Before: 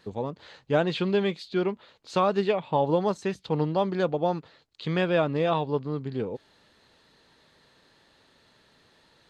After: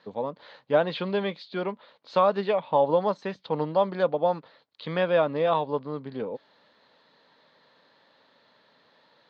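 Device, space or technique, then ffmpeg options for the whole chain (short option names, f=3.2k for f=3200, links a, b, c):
kitchen radio: -af "highpass=210,equalizer=f=360:t=q:w=4:g=-7,equalizer=f=560:t=q:w=4:g=5,equalizer=f=1k:t=q:w=4:g=4,equalizer=f=2.7k:t=q:w=4:g=-4,lowpass=f=4.5k:w=0.5412,lowpass=f=4.5k:w=1.3066"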